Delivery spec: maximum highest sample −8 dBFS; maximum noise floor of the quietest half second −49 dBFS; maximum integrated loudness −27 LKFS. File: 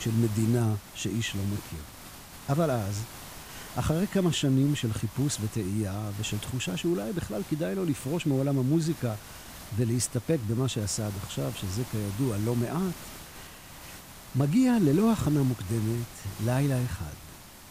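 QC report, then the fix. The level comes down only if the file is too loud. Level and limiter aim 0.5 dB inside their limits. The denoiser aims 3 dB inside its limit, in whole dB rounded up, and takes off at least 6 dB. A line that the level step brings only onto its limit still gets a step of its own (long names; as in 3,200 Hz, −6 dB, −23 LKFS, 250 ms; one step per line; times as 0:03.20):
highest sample −13.5 dBFS: in spec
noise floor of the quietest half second −47 dBFS: out of spec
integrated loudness −28.5 LKFS: in spec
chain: broadband denoise 6 dB, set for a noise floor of −47 dBFS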